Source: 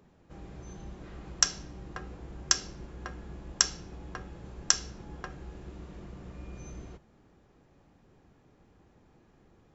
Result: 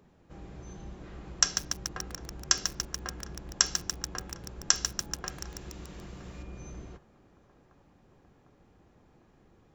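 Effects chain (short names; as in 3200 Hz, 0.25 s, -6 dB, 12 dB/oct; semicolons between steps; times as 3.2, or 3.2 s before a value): 5.26–6.43 high shelf 2100 Hz +10.5 dB; on a send: narrowing echo 0.752 s, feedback 76%, band-pass 780 Hz, level -20 dB; on the sum: lo-fi delay 0.144 s, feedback 80%, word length 6-bit, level -7 dB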